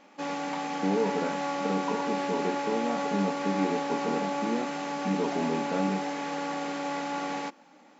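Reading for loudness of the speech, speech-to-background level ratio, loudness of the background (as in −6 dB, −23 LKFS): −32.5 LKFS, −0.5 dB, −32.0 LKFS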